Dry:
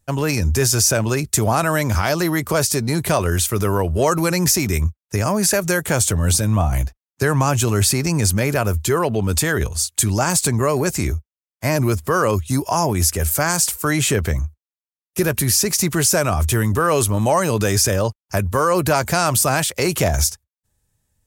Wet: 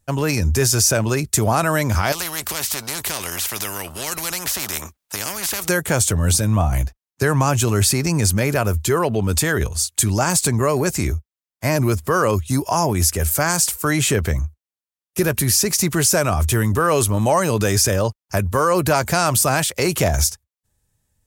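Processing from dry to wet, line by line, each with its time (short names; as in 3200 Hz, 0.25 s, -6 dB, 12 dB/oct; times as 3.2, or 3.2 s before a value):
2.12–5.69 spectral compressor 4:1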